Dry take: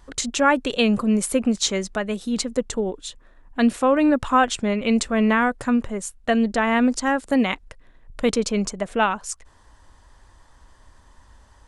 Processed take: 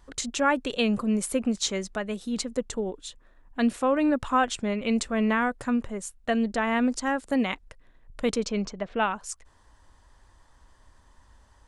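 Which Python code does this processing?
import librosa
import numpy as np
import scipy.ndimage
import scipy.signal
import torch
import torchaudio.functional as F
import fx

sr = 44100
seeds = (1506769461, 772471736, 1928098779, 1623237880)

y = fx.lowpass(x, sr, hz=fx.line((8.44, 7100.0), (9.12, 3700.0)), slope=24, at=(8.44, 9.12), fade=0.02)
y = F.gain(torch.from_numpy(y), -5.5).numpy()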